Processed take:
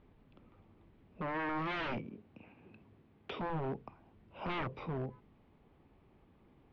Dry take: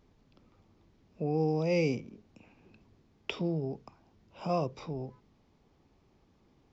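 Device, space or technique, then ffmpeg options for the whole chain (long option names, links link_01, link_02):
synthesiser wavefolder: -filter_complex "[0:a]asettb=1/sr,asplit=3[link_01][link_02][link_03];[link_01]atrim=end=1.494[link_04];[link_02]atrim=start=1.49:end=3.5,asetpts=PTS-STARTPTS,afade=type=in:duration=0.004:curve=qsin,afade=type=out:start_time=2.006:duration=0.004:curve=qsin,highpass=69[link_05];[link_03]atrim=start=3.496[link_06];[link_04][link_05]acrossfade=duration=0.004:curve1=hsin:curve2=qsin[link_07];[link_07][link_06]acrossfade=duration=0.004:curve1=qsin:curve2=hsin,aeval=exprs='0.0224*(abs(mod(val(0)/0.0224+3,4)-2)-1)':channel_layout=same,lowpass=frequency=3100:width=0.5412,lowpass=frequency=3100:width=1.3066,volume=1.5dB"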